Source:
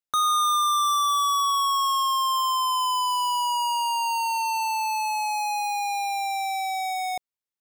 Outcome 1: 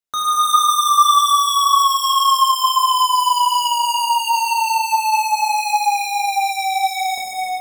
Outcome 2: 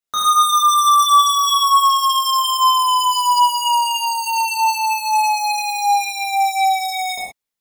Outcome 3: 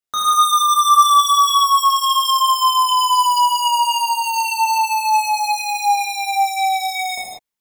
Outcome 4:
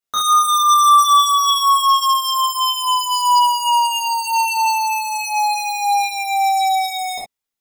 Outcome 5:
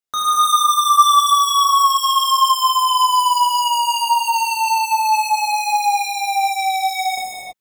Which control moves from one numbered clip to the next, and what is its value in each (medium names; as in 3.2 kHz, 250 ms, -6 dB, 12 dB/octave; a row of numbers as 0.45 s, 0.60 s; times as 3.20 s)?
gated-style reverb, gate: 530 ms, 150 ms, 220 ms, 90 ms, 360 ms